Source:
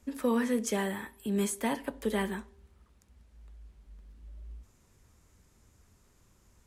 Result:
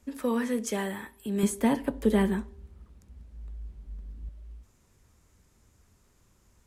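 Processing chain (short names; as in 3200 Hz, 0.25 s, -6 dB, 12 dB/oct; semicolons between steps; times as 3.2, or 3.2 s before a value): 1.43–4.29 low shelf 480 Hz +11 dB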